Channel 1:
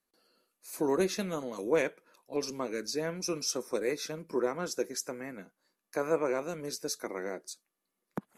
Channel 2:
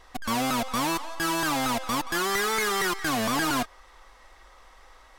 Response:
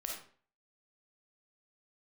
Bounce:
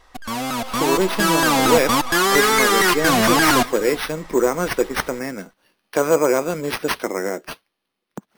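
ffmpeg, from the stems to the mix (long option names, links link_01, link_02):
-filter_complex "[0:a]acrusher=samples=6:mix=1:aa=0.000001,asoftclip=type=hard:threshold=-21.5dB,volume=2.5dB[link_01];[1:a]volume=0dB,asplit=2[link_02][link_03];[link_03]volume=-20dB,aecho=0:1:346:1[link_04];[link_01][link_02][link_04]amix=inputs=3:normalize=0,dynaudnorm=framelen=140:gausssize=13:maxgain=11dB"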